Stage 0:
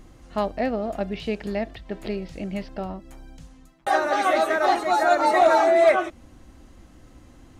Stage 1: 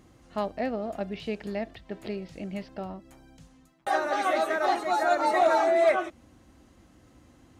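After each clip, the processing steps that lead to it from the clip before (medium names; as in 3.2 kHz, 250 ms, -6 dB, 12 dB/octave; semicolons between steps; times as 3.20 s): high-pass 71 Hz 12 dB/octave; trim -5 dB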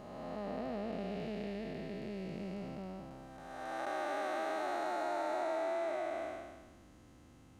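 spectral blur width 680 ms; compression 4:1, threshold -33 dBFS, peak gain reduction 9 dB; trim -1.5 dB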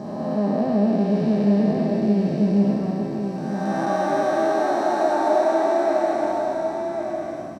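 delay 1099 ms -5.5 dB; reverberation RT60 0.80 s, pre-delay 3 ms, DRR 1 dB; trim +3.5 dB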